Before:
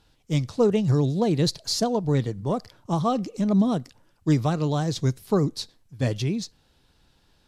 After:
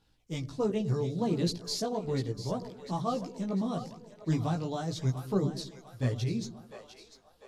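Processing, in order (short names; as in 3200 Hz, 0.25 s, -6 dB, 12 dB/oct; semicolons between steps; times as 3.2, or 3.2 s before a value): split-band echo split 460 Hz, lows 0.102 s, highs 0.698 s, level -11.5 dB; chorus voices 2, 0.36 Hz, delay 17 ms, depth 1.6 ms; ending taper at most 410 dB/s; gain -5 dB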